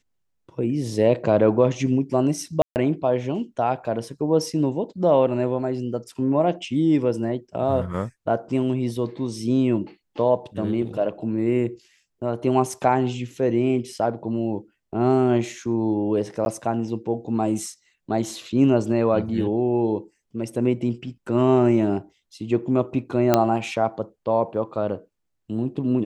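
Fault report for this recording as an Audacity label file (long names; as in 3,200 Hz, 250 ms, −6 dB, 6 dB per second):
2.620000	2.760000	drop-out 139 ms
16.450000	16.460000	drop-out
23.340000	23.340000	click −3 dBFS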